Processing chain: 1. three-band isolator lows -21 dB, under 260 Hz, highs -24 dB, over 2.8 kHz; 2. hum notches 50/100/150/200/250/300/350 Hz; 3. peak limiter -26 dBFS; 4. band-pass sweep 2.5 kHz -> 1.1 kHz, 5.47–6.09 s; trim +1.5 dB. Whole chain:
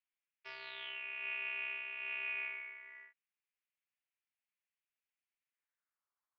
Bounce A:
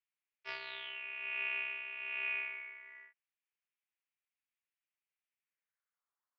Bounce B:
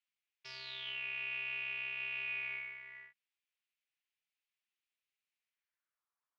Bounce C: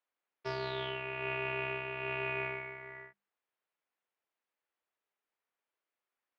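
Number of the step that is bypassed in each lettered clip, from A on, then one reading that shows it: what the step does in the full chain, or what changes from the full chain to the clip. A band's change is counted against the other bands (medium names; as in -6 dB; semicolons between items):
3, crest factor change +2.0 dB; 1, 4 kHz band +6.5 dB; 4, 500 Hz band +18.0 dB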